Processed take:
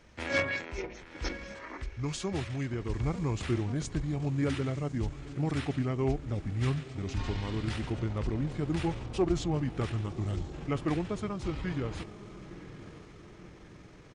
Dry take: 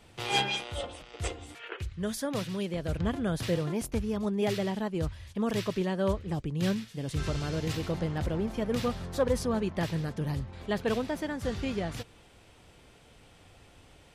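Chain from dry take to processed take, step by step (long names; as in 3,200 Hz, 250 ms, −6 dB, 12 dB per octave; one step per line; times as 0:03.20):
feedback delay with all-pass diffusion 1,003 ms, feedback 52%, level −14 dB
pitch shifter −6.5 semitones
level −1 dB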